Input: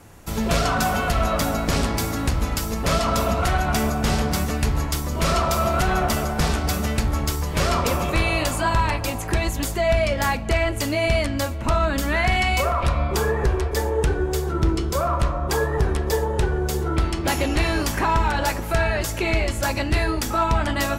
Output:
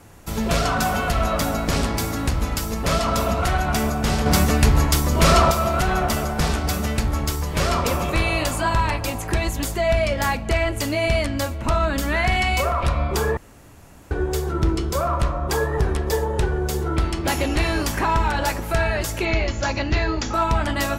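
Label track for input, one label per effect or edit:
4.260000	5.510000	gain +6 dB
13.370000	14.110000	room tone
19.250000	20.340000	brick-wall FIR low-pass 7.3 kHz

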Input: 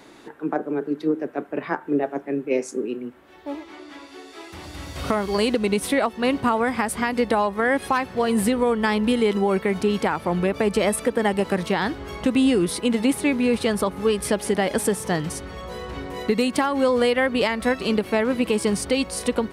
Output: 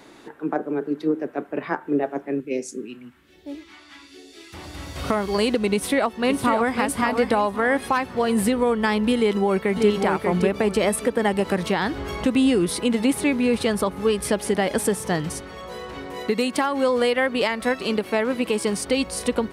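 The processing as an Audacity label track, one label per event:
2.400000	4.540000	phase shifter stages 2, 1.2 Hz, lowest notch 410–1100 Hz
5.740000	6.780000	echo throw 550 ms, feedback 35%, level -6.5 dB
9.170000	9.880000	echo throw 590 ms, feedback 25%, level -4 dB
11.280000	13.630000	upward compressor, threshold -22 dBFS
15.410000	18.890000	bass shelf 130 Hz -11 dB

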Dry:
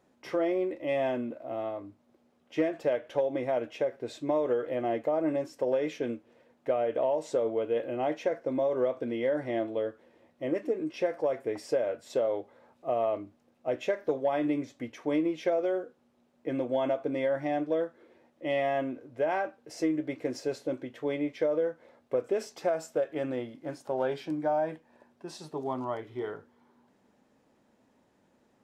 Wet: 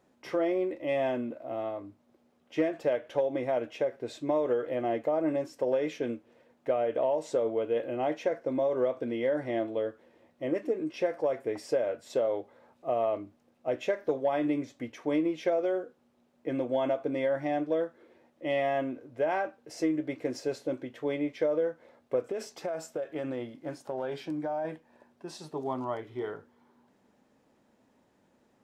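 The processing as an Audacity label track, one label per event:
22.210000	24.650000	compression, threshold -29 dBFS

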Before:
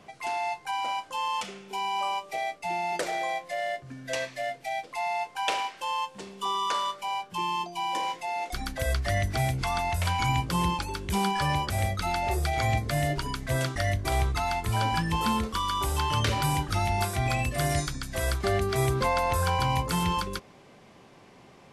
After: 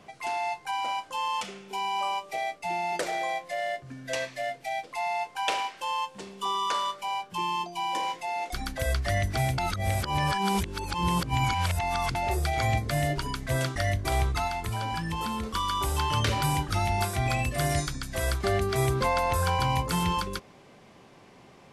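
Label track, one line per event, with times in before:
9.580000	12.150000	reverse
14.470000	15.530000	compression, threshold -27 dBFS

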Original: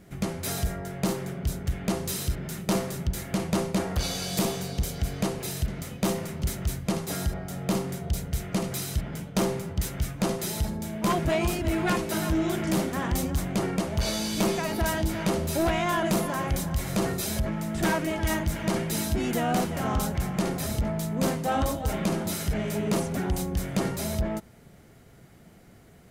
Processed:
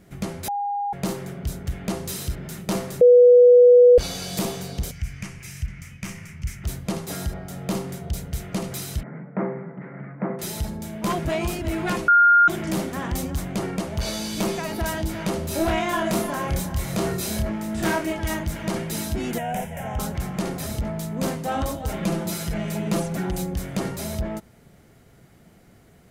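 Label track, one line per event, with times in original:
0.480000	0.930000	bleep 812 Hz -23 dBFS
3.010000	3.980000	bleep 490 Hz -8 dBFS
4.910000	6.640000	FFT filter 110 Hz 0 dB, 470 Hz -21 dB, 760 Hz -17 dB, 2.3 kHz +4 dB, 3.9 kHz -14 dB, 5.6 kHz -2 dB, 14 kHz -11 dB
9.030000	10.390000	Chebyshev band-pass 140–2100 Hz, order 5
12.080000	12.480000	bleep 1.41 kHz -11 dBFS
15.480000	18.130000	doubling 28 ms -3 dB
19.380000	19.990000	static phaser centre 1.2 kHz, stages 6
22.020000	23.540000	comb 5.9 ms, depth 56%

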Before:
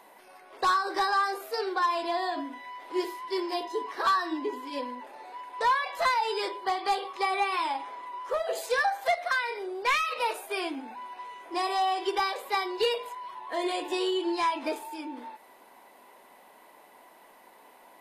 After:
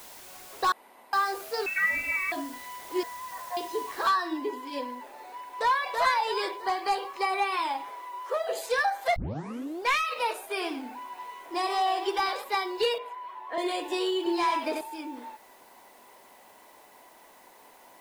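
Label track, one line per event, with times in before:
0.720000	1.130000	room tone
1.660000	2.320000	frequency inversion carrier 3 kHz
3.030000	3.570000	brick-wall FIR band-pass 460–2100 Hz
4.080000	4.080000	noise floor step -48 dB -62 dB
5.300000	5.900000	echo throw 330 ms, feedback 45%, level -4 dB
6.600000	7.390000	band-stop 3.5 kHz, Q 8.2
7.900000	8.440000	steep high-pass 310 Hz
9.160000	9.160000	tape start 0.66 s
10.490000	12.440000	modulated delay 91 ms, feedback 30%, depth 146 cents, level -10.5 dB
12.980000	13.580000	three-band isolator lows -16 dB, under 240 Hz, highs -15 dB, over 3.2 kHz
14.170000	14.810000	delay 91 ms -4.5 dB

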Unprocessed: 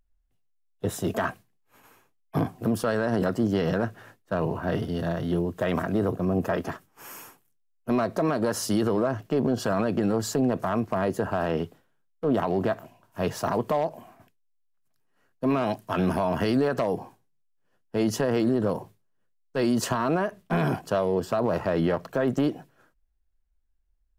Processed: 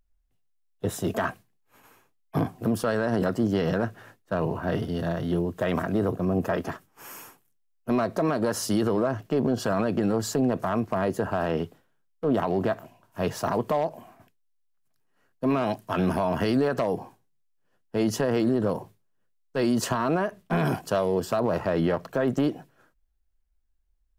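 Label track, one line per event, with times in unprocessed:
20.650000	21.400000	treble shelf 4.1 kHz +6 dB

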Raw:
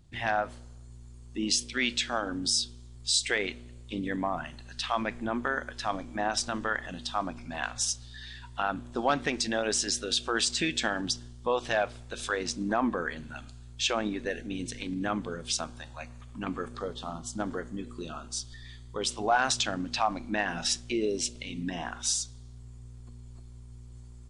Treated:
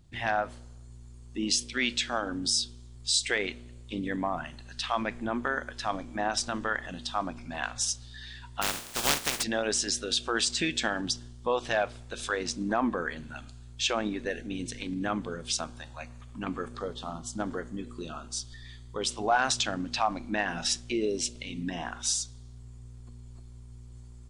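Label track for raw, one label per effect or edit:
8.610000	9.420000	spectral contrast reduction exponent 0.17

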